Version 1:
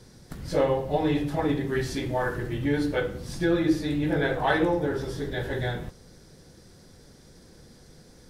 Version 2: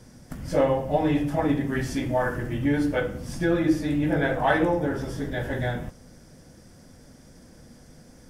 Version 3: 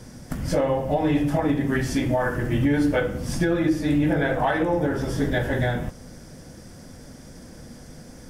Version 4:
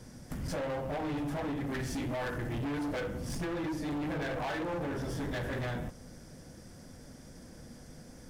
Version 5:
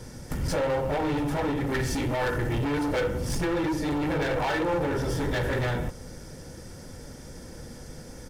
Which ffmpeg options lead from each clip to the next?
-af "equalizer=f=250:t=o:w=0.33:g=6,equalizer=f=400:t=o:w=0.33:g=-7,equalizer=f=630:t=o:w=0.33:g=4,equalizer=f=4k:t=o:w=0.33:g=-11,volume=1.5dB"
-af "alimiter=limit=-19.5dB:level=0:latency=1:release=343,volume=7dB"
-af "volume=25dB,asoftclip=hard,volume=-25dB,volume=-7.5dB"
-af "aecho=1:1:2.2:0.34,volume=8dB"

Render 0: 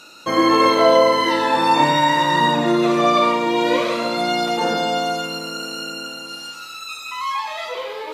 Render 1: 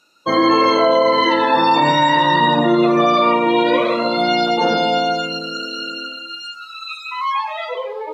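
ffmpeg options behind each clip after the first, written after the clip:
-af "afftdn=nr=19:nf=-27,alimiter=level_in=8.5dB:limit=-1dB:release=50:level=0:latency=1,volume=-4.5dB"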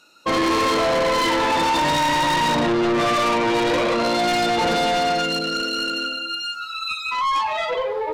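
-af "asoftclip=type=tanh:threshold=-21.5dB,volume=4dB"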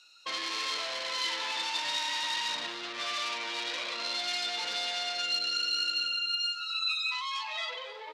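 -af "acompressor=threshold=-23dB:ratio=6,bandpass=f=4.2k:t=q:w=1.2:csg=0,aecho=1:1:264:0.2"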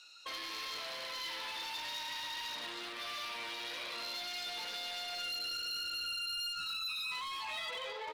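-af "alimiter=level_in=7.5dB:limit=-24dB:level=0:latency=1:release=76,volume=-7.5dB,asoftclip=type=hard:threshold=-37dB,volume=1.5dB"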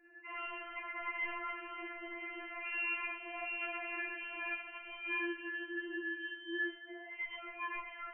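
-af "flanger=delay=22.5:depth=5.6:speed=1.4,lowpass=f=2.6k:t=q:w=0.5098,lowpass=f=2.6k:t=q:w=0.6013,lowpass=f=2.6k:t=q:w=0.9,lowpass=f=2.6k:t=q:w=2.563,afreqshift=-3100,afftfilt=real='re*4*eq(mod(b,16),0)':imag='im*4*eq(mod(b,16),0)':win_size=2048:overlap=0.75,volume=8dB"

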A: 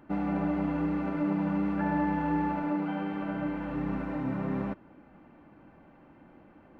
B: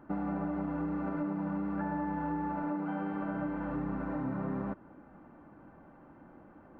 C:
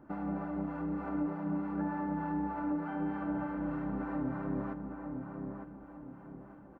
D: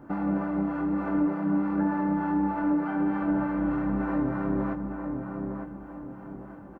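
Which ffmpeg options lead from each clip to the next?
-af "highshelf=f=1.9k:t=q:w=1.5:g=-7.5,acompressor=threshold=-31dB:ratio=6"
-filter_complex "[0:a]acrossover=split=680[a][b];[a]aeval=exprs='val(0)*(1-0.5/2+0.5/2*cos(2*PI*3.3*n/s))':c=same[c];[b]aeval=exprs='val(0)*(1-0.5/2-0.5/2*cos(2*PI*3.3*n/s))':c=same[d];[c][d]amix=inputs=2:normalize=0,asplit=2[e][f];[f]adelay=907,lowpass=f=1.5k:p=1,volume=-5dB,asplit=2[g][h];[h]adelay=907,lowpass=f=1.5k:p=1,volume=0.4,asplit=2[i][j];[j]adelay=907,lowpass=f=1.5k:p=1,volume=0.4,asplit=2[k][l];[l]adelay=907,lowpass=f=1.5k:p=1,volume=0.4,asplit=2[m][n];[n]adelay=907,lowpass=f=1.5k:p=1,volume=0.4[o];[e][g][i][k][m][o]amix=inputs=6:normalize=0"
-filter_complex "[0:a]asplit=2[a][b];[b]adelay=21,volume=-6dB[c];[a][c]amix=inputs=2:normalize=0,volume=7.5dB"

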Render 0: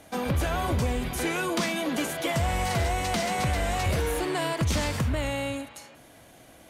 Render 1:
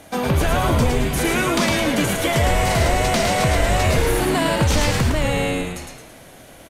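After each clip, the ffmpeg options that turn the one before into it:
-filter_complex "[0:a]asplit=7[a][b][c][d][e][f][g];[b]adelay=109,afreqshift=-100,volume=-3.5dB[h];[c]adelay=218,afreqshift=-200,volume=-10.4dB[i];[d]adelay=327,afreqshift=-300,volume=-17.4dB[j];[e]adelay=436,afreqshift=-400,volume=-24.3dB[k];[f]adelay=545,afreqshift=-500,volume=-31.2dB[l];[g]adelay=654,afreqshift=-600,volume=-38.2dB[m];[a][h][i][j][k][l][m]amix=inputs=7:normalize=0,volume=7dB"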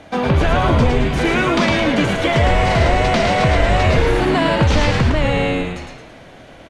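-af "lowpass=3.9k,volume=3.5dB"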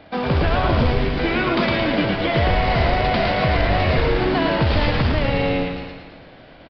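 -filter_complex "[0:a]acrusher=bits=3:mode=log:mix=0:aa=0.000001,aresample=11025,aresample=44100,asplit=2[a][b];[b]aecho=0:1:112|224|336|448|560|672:0.376|0.203|0.11|0.0592|0.032|0.0173[c];[a][c]amix=inputs=2:normalize=0,volume=-4.5dB"

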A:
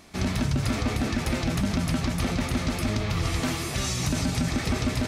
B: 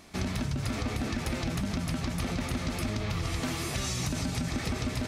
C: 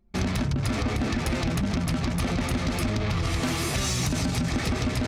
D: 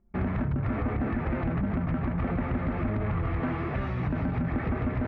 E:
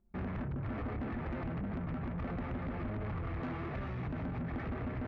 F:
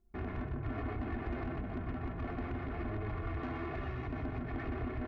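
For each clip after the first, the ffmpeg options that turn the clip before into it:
-af "acompressor=threshold=-26dB:ratio=6,volume=-1.5dB"
-af "anlmdn=0.631,aeval=exprs='0.112*(cos(1*acos(clip(val(0)/0.112,-1,1)))-cos(1*PI/2))+0.00891*(cos(5*acos(clip(val(0)/0.112,-1,1)))-cos(5*PI/2))':c=same,volume=4dB"
-af "lowpass=f=1.9k:w=0.5412,lowpass=f=1.9k:w=1.3066,volume=-2dB"
-af "asoftclip=type=tanh:threshold=-27.5dB,volume=-6dB"
-filter_complex "[0:a]aecho=1:1:2.8:0.61,asplit=2[a][b];[b]aecho=0:1:124:0.422[c];[a][c]amix=inputs=2:normalize=0,volume=-1.5dB"

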